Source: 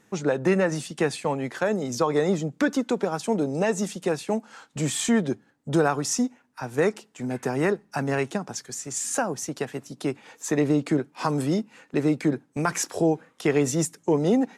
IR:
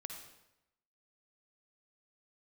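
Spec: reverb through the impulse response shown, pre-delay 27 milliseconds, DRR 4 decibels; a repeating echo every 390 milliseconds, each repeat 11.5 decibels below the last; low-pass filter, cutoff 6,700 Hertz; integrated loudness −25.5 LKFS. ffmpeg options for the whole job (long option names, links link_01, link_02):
-filter_complex "[0:a]lowpass=6700,aecho=1:1:390|780|1170:0.266|0.0718|0.0194,asplit=2[link_01][link_02];[1:a]atrim=start_sample=2205,adelay=27[link_03];[link_02][link_03]afir=irnorm=-1:irlink=0,volume=-1dB[link_04];[link_01][link_04]amix=inputs=2:normalize=0,volume=-1dB"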